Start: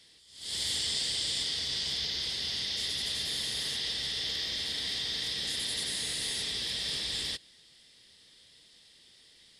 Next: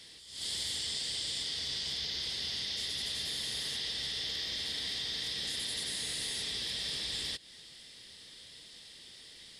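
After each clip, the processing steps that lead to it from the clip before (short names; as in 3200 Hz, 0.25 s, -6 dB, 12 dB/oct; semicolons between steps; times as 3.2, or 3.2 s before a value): compressor 4:1, threshold -42 dBFS, peak gain reduction 11.5 dB; gain +6.5 dB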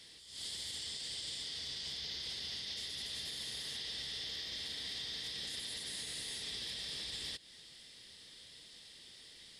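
limiter -29.5 dBFS, peak gain reduction 6.5 dB; gain -3.5 dB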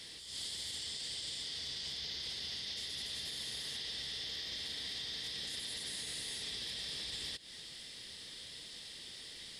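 compressor 3:1, threshold -47 dBFS, peak gain reduction 6.5 dB; gain +6.5 dB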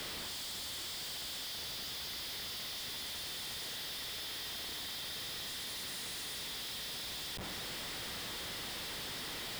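Schmitt trigger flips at -53.5 dBFS; gain +1 dB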